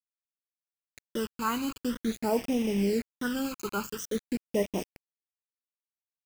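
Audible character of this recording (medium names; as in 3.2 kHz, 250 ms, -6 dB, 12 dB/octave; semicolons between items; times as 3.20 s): a quantiser's noise floor 6-bit, dither none; phasing stages 12, 0.48 Hz, lowest notch 590–1400 Hz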